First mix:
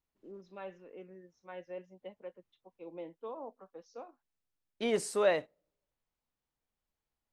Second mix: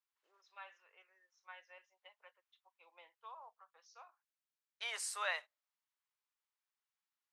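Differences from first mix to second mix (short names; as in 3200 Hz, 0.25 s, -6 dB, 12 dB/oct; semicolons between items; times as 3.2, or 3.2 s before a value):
second voice: send -8.5 dB; master: add HPF 1000 Hz 24 dB/oct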